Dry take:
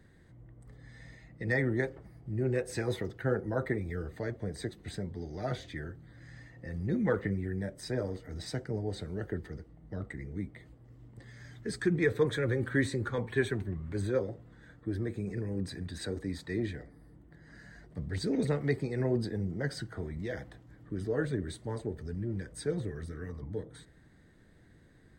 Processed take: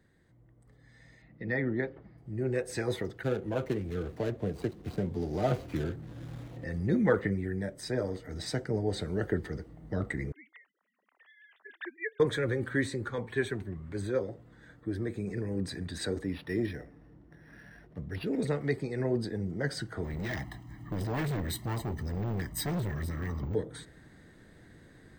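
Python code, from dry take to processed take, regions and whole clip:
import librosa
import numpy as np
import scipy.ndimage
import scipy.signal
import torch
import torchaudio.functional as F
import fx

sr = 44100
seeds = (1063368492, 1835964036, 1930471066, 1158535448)

y = fx.chain(x, sr, fx.lowpass(hz=4100.0, slope=24),
    fx.peak_eq(hz=220.0, db=5.0, octaves=0.9), at=(1.22, 2.18))
y = fx.chain(y, sr, fx.median_filter(points=25),
    fx.band_squash(depth_pct=40), at=(3.23, 6.64))
y = fx.chain(y, sr, fx.sine_speech(),
    fx.highpass(hz=1200.0, slope=12), at=(10.32, 12.2))
y = fx.chain(y, sr, fx.cheby1_lowpass(hz=4500.0, order=2),
    fx.resample_linear(factor=6), at=(16.24, 18.42))
y = fx.chain(y, sr, fx.comb(ms=1.0, depth=0.93),
    fx.resample_bad(factor=2, down='none', up='hold'),
    fx.clip_hard(threshold_db=-35.0), at=(20.04, 23.55))
y = fx.low_shelf(y, sr, hz=130.0, db=-5.5)
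y = fx.rider(y, sr, range_db=10, speed_s=2.0)
y = F.gain(torch.from_numpy(y), 2.0).numpy()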